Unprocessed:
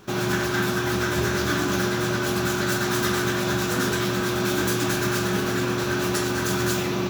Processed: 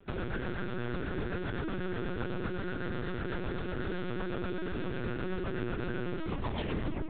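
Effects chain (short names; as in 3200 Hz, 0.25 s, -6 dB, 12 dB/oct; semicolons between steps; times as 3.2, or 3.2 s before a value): tape stop at the end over 1.00 s; limiter -17 dBFS, peak gain reduction 6 dB; rotary speaker horn 8 Hz; air absorption 210 m; split-band echo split 910 Hz, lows 0.636 s, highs 0.105 s, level -10.5 dB; LPC vocoder at 8 kHz pitch kept; gain -6 dB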